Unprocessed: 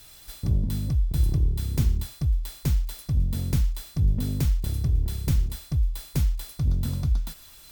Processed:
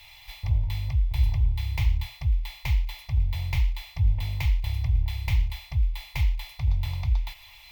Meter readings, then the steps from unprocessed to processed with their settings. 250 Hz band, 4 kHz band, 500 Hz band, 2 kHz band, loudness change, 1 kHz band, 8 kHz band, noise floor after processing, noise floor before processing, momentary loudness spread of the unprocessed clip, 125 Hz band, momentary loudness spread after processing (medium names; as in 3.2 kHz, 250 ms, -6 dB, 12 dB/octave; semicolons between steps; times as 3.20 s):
under -10 dB, +2.5 dB, -10.5 dB, +9.5 dB, -1.0 dB, +5.0 dB, -10.5 dB, -50 dBFS, -49 dBFS, 4 LU, -1.5 dB, 4 LU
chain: FFT filter 110 Hz 0 dB, 200 Hz -27 dB, 410 Hz -19 dB, 890 Hz +10 dB, 1.5 kHz -11 dB, 2.1 kHz +14 dB, 9 kHz -15 dB, 14 kHz -7 dB